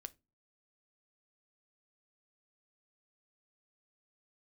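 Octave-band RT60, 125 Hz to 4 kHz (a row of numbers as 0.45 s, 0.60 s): 0.55 s, 0.45 s, 0.30 s, 0.20 s, 0.20 s, 0.20 s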